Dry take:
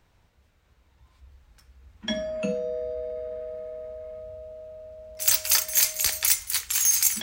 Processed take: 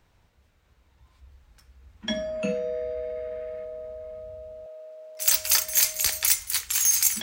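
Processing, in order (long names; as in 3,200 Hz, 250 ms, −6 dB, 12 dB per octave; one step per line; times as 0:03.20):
0:02.45–0:03.65: parametric band 2,100 Hz +9.5 dB 1 octave
0:04.66–0:05.33: high-pass filter 350 Hz 24 dB per octave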